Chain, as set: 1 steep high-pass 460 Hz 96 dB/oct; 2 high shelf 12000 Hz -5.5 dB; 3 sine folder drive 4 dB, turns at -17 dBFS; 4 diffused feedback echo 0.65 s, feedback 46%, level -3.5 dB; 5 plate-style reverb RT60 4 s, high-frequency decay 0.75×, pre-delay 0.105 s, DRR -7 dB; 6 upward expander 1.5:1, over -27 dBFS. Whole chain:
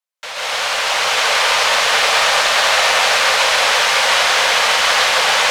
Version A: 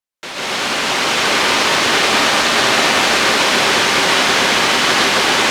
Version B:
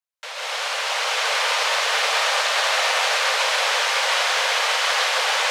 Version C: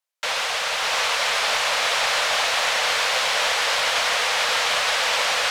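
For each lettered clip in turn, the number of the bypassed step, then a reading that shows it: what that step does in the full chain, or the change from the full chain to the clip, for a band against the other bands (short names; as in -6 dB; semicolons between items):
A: 1, 250 Hz band +19.5 dB; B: 3, loudness change -6.5 LU; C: 5, momentary loudness spread change -2 LU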